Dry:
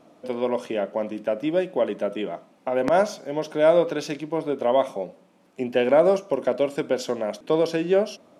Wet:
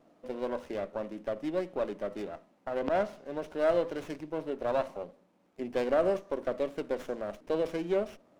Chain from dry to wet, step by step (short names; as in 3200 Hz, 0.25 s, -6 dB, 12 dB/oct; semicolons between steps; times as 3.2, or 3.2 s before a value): 2.79–3.26 LPF 4300 Hz 12 dB/oct; running maximum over 9 samples; gain -9 dB